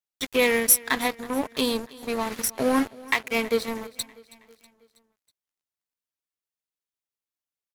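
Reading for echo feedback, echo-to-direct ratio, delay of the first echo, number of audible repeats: 54%, -19.5 dB, 0.322 s, 3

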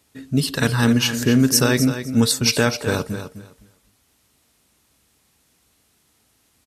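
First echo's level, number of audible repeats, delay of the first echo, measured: -10.5 dB, 2, 0.256 s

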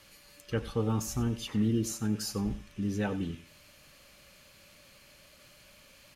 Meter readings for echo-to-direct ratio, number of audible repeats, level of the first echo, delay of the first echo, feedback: -15.5 dB, 2, -15.5 dB, 93 ms, 23%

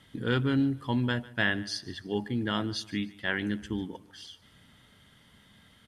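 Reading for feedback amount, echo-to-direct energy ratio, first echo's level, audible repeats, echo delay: 36%, -19.5 dB, -20.0 dB, 2, 0.148 s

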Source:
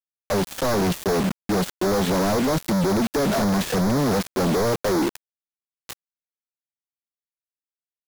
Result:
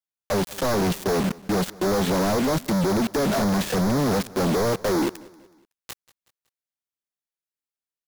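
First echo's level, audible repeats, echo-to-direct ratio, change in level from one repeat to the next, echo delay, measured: -22.0 dB, 2, -21.0 dB, -7.0 dB, 0.186 s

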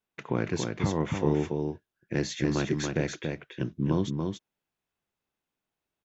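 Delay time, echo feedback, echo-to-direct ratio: 0.282 s, no steady repeat, -4.5 dB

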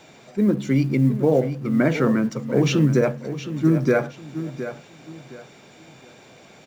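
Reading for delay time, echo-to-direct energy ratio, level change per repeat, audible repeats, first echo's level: 0.716 s, -11.0 dB, -11.0 dB, 3, -11.5 dB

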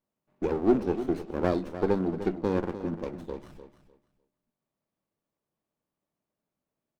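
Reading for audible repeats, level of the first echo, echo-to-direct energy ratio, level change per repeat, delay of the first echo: 2, -12.0 dB, -12.0 dB, -14.0 dB, 0.301 s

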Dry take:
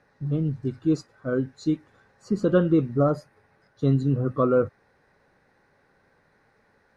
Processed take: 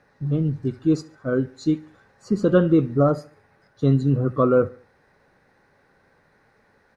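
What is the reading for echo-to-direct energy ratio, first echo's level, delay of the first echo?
-20.5 dB, -21.5 dB, 71 ms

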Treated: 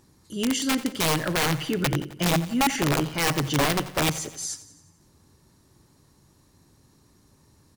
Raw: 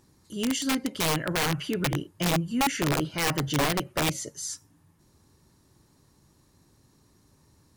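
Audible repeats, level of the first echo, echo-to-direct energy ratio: 5, -16.0 dB, -14.5 dB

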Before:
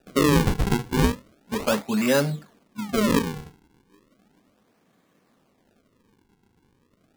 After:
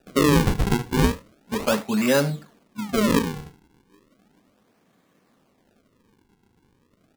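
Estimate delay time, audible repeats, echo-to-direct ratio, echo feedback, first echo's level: 75 ms, 1, -19.5 dB, no steady repeat, -19.5 dB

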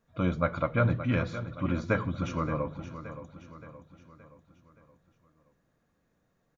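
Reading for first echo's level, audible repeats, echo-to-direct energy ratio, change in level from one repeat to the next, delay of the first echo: -12.0 dB, 4, -11.0 dB, -6.0 dB, 0.572 s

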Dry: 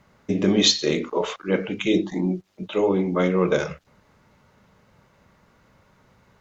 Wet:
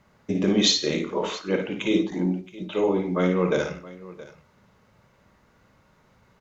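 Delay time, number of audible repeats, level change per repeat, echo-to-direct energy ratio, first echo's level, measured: 55 ms, 3, no steady repeat, -5.0 dB, -6.0 dB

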